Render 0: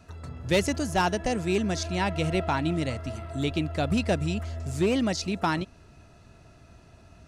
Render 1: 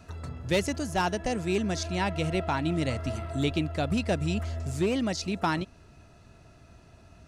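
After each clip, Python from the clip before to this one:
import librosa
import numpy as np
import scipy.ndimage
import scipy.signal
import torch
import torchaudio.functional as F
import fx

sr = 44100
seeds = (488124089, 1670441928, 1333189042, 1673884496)

y = fx.rider(x, sr, range_db=5, speed_s=0.5)
y = y * 10.0 ** (-1.5 / 20.0)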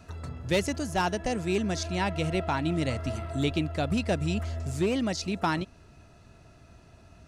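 y = x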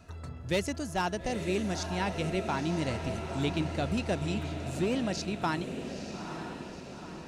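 y = fx.echo_diffused(x, sr, ms=913, feedback_pct=57, wet_db=-8)
y = y * 10.0 ** (-3.5 / 20.0)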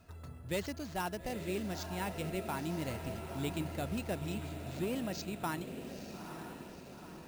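y = np.repeat(x[::4], 4)[:len(x)]
y = y * 10.0 ** (-6.5 / 20.0)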